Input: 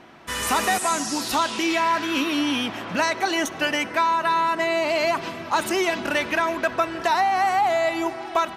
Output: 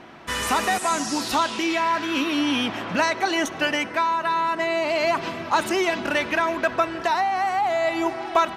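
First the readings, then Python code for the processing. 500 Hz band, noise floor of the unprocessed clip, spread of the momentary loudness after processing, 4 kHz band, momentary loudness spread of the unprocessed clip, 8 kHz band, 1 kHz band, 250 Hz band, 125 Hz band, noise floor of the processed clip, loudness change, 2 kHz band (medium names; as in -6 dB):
0.0 dB, -35 dBFS, 2 LU, -0.5 dB, 5 LU, -2.5 dB, -0.5 dB, +0.5 dB, +1.0 dB, -35 dBFS, -0.5 dB, 0.0 dB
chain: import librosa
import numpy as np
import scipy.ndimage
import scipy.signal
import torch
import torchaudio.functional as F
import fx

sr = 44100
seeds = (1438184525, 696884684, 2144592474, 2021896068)

y = fx.high_shelf(x, sr, hz=8500.0, db=-7.5)
y = fx.rider(y, sr, range_db=4, speed_s=0.5)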